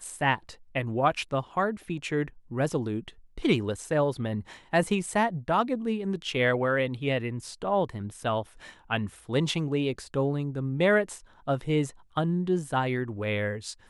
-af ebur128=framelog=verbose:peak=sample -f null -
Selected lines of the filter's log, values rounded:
Integrated loudness:
  I:         -28.5 LUFS
  Threshold: -38.6 LUFS
Loudness range:
  LRA:         2.5 LU
  Threshold: -48.5 LUFS
  LRA low:   -30.0 LUFS
  LRA high:  -27.4 LUFS
Sample peak:
  Peak:       -9.9 dBFS